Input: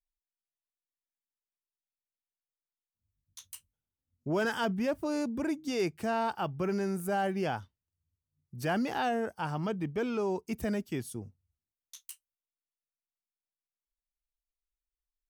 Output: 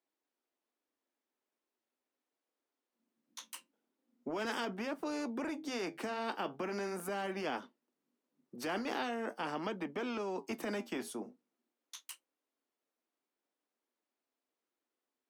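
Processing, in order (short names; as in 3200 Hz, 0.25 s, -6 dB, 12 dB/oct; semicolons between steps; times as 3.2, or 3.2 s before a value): steep high-pass 240 Hz 48 dB/oct; tilt -4.5 dB/oct; limiter -23.5 dBFS, peak gain reduction 7 dB; flange 0.41 Hz, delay 5.9 ms, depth 5.3 ms, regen -64%; spectral compressor 2:1; gain +1 dB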